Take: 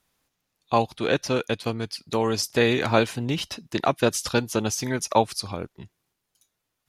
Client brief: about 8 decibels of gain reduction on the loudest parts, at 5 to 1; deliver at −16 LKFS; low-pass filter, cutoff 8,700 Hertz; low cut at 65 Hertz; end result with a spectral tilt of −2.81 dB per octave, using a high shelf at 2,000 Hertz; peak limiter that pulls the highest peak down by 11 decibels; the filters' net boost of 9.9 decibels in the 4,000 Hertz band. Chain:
high-pass filter 65 Hz
low-pass filter 8,700 Hz
high-shelf EQ 2,000 Hz +4.5 dB
parametric band 4,000 Hz +8 dB
downward compressor 5 to 1, threshold −22 dBFS
level +13.5 dB
brickwall limiter −4 dBFS

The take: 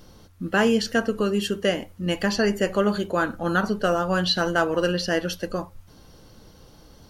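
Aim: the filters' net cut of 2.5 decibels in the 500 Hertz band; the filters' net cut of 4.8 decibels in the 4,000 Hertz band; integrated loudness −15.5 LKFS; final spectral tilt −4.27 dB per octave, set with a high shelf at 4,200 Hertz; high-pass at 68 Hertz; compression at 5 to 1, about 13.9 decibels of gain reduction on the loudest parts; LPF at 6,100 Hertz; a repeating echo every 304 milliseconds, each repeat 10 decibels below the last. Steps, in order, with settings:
high-pass filter 68 Hz
low-pass filter 6,100 Hz
parametric band 500 Hz −3 dB
parametric band 4,000 Hz −3.5 dB
high-shelf EQ 4,200 Hz −3.5 dB
downward compressor 5 to 1, threshold −34 dBFS
repeating echo 304 ms, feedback 32%, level −10 dB
level +21.5 dB

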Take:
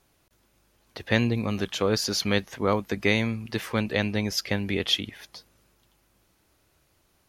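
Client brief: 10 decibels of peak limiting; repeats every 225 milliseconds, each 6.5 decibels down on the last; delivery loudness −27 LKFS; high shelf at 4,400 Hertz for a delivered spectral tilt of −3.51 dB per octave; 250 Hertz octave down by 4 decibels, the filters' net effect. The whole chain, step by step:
parametric band 250 Hz −5 dB
high-shelf EQ 4,400 Hz +7.5 dB
brickwall limiter −15 dBFS
repeating echo 225 ms, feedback 47%, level −6.5 dB
level +0.5 dB

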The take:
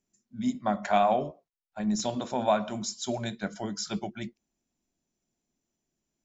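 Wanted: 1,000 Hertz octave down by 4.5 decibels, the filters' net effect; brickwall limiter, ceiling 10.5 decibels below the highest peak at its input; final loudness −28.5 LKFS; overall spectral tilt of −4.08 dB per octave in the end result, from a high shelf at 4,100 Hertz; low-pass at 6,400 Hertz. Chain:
low-pass filter 6,400 Hz
parametric band 1,000 Hz −8 dB
high-shelf EQ 4,100 Hz +9 dB
level +6 dB
brickwall limiter −17 dBFS

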